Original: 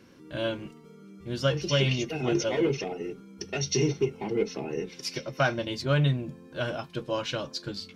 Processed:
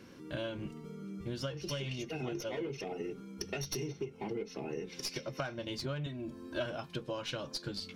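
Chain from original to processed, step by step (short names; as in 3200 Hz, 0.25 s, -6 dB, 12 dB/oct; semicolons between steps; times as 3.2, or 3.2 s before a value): tracing distortion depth 0.039 ms; 0.55–1.22 low shelf 220 Hz +8 dB; compressor 10:1, threshold -36 dBFS, peak gain reduction 16.5 dB; 6.06–6.66 comb 3.1 ms, depth 91%; gain +1 dB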